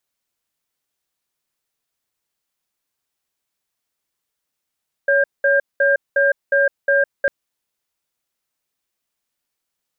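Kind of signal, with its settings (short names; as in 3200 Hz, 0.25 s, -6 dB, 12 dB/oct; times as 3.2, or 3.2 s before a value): cadence 560 Hz, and 1600 Hz, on 0.16 s, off 0.20 s, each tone -15 dBFS 2.20 s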